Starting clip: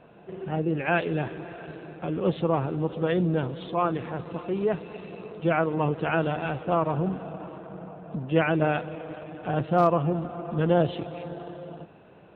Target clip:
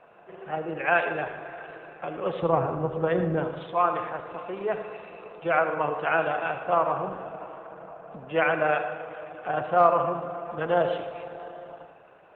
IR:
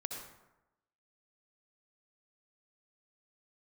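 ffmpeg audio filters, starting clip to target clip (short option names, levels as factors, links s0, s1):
-filter_complex "[0:a]asplit=3[s0][s1][s2];[s0]afade=t=out:st=2.41:d=0.02[s3];[s1]aemphasis=mode=reproduction:type=riaa,afade=t=in:st=2.41:d=0.02,afade=t=out:st=3.42:d=0.02[s4];[s2]afade=t=in:st=3.42:d=0.02[s5];[s3][s4][s5]amix=inputs=3:normalize=0,tremolo=f=26:d=0.261,acrossover=split=550 2900:gain=0.126 1 0.112[s6][s7][s8];[s6][s7][s8]amix=inputs=3:normalize=0,bandreject=f=910:w=24,asplit=2[s9][s10];[1:a]atrim=start_sample=2205[s11];[s10][s11]afir=irnorm=-1:irlink=0,volume=1.26[s12];[s9][s12]amix=inputs=2:normalize=0" -ar 48000 -c:a libopus -b:a 24k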